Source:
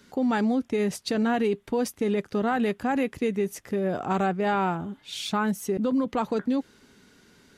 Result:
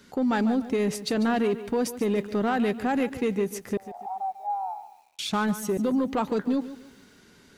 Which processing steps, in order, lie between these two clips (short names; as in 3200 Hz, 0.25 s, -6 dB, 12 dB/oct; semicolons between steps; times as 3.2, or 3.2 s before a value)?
soft clip -18.5 dBFS, distortion -21 dB; 3.77–5.19 Butterworth band-pass 810 Hz, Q 5.5; lo-fi delay 0.145 s, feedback 35%, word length 9-bit, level -13.5 dB; gain +1.5 dB